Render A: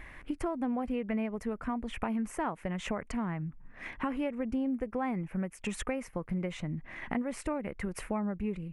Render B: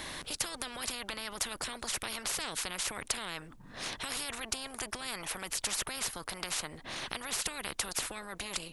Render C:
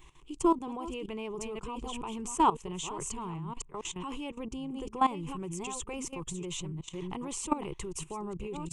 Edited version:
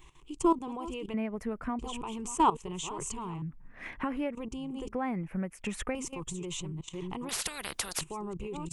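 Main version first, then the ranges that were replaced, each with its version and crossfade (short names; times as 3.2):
C
1.14–1.79 from A
3.42–4.35 from A
4.92–5.95 from A
7.29–8.01 from B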